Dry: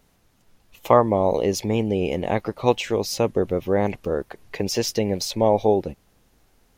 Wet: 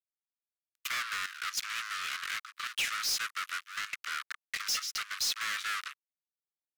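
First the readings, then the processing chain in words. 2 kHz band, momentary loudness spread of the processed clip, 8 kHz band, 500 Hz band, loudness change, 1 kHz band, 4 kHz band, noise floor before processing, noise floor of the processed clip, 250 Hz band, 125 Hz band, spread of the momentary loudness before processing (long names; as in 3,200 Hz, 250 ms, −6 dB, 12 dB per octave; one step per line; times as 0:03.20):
+2.5 dB, 7 LU, −2.5 dB, below −40 dB, −11.5 dB, −14.0 dB, −1.0 dB, −62 dBFS, below −85 dBFS, below −40 dB, below −35 dB, 9 LU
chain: fuzz pedal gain 31 dB, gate −37 dBFS
Butterworth high-pass 1,200 Hz 72 dB per octave
high-shelf EQ 10,000 Hz −4 dB
gate pattern "x..x.xxxxxxxxxx" 191 BPM −12 dB
soft clipping −21 dBFS, distortion −10 dB
level −6 dB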